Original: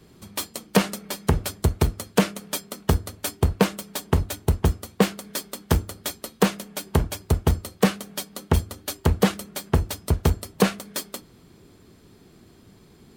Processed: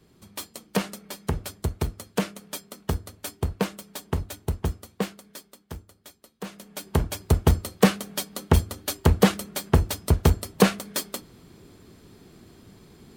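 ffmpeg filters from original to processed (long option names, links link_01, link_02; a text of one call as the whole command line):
ffmpeg -i in.wav -af "volume=13dB,afade=type=out:start_time=4.75:duration=0.9:silence=0.266073,afade=type=in:start_time=6.43:duration=0.28:silence=0.237137,afade=type=in:start_time=6.71:duration=0.69:silence=0.446684" out.wav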